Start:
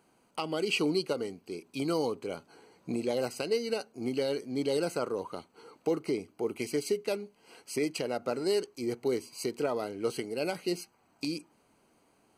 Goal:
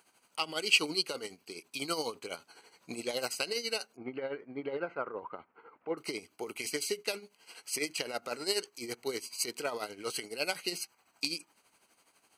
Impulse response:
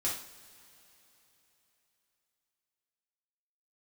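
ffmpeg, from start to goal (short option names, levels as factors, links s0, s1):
-filter_complex "[0:a]tremolo=f=12:d=0.64,asplit=3[s0][s1][s2];[s0]afade=t=out:st=3.95:d=0.02[s3];[s1]lowpass=f=1900:w=0.5412,lowpass=f=1900:w=1.3066,afade=t=in:st=3.95:d=0.02,afade=t=out:st=5.97:d=0.02[s4];[s2]afade=t=in:st=5.97:d=0.02[s5];[s3][s4][s5]amix=inputs=3:normalize=0,tiltshelf=f=780:g=-9"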